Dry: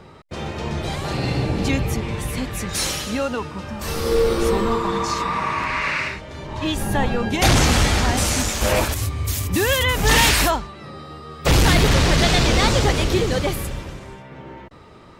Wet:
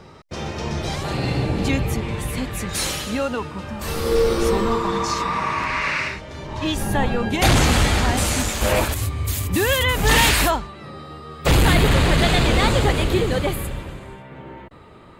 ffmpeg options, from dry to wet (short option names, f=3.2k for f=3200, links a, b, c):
-af "asetnsamples=n=441:p=0,asendcmd='1.03 equalizer g -4;4.15 equalizer g 2;6.92 equalizer g -5.5;11.55 equalizer g -14',equalizer=f=5.6k:t=o:w=0.4:g=7"